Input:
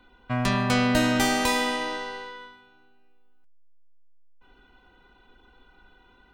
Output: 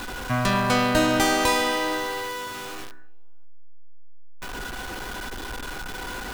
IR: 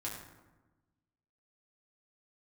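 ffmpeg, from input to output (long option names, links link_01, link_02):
-filter_complex "[0:a]aeval=exprs='val(0)+0.5*0.0335*sgn(val(0))':channel_layout=same,asplit=2[link_01][link_02];[link_02]highshelf=frequency=2100:width_type=q:width=3:gain=-7[link_03];[1:a]atrim=start_sample=2205,afade=type=out:start_time=0.27:duration=0.01,atrim=end_sample=12348[link_04];[link_03][link_04]afir=irnorm=-1:irlink=0,volume=-9.5dB[link_05];[link_01][link_05]amix=inputs=2:normalize=0"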